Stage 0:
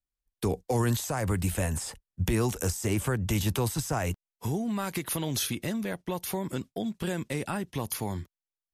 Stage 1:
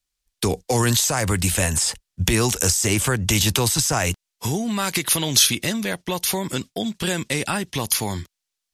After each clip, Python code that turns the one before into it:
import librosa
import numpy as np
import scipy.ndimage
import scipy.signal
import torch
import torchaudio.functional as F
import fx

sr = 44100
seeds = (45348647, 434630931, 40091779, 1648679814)

y = fx.peak_eq(x, sr, hz=5200.0, db=11.5, octaves=2.9)
y = y * 10.0 ** (5.5 / 20.0)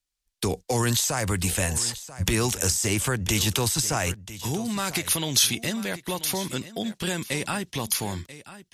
y = x + 10.0 ** (-15.5 / 20.0) * np.pad(x, (int(987 * sr / 1000.0), 0))[:len(x)]
y = y * 10.0 ** (-4.5 / 20.0)